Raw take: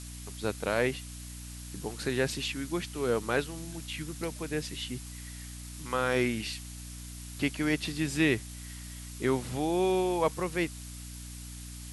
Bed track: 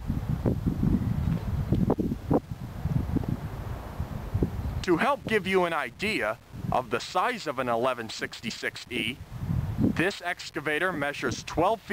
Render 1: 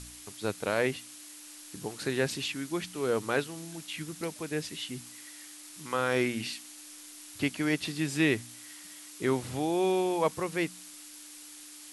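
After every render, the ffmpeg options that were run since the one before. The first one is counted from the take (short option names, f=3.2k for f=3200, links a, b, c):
-af "bandreject=f=60:t=h:w=4,bandreject=f=120:t=h:w=4,bandreject=f=180:t=h:w=4,bandreject=f=240:t=h:w=4"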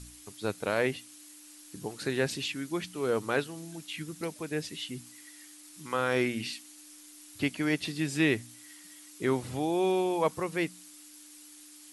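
-af "afftdn=nr=6:nf=-49"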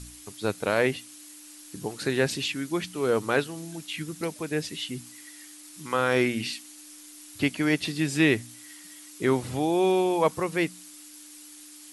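-af "volume=4.5dB"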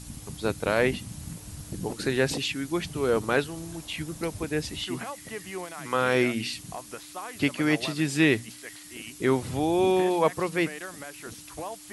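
-filter_complex "[1:a]volume=-12.5dB[a];[0:a][a]amix=inputs=2:normalize=0"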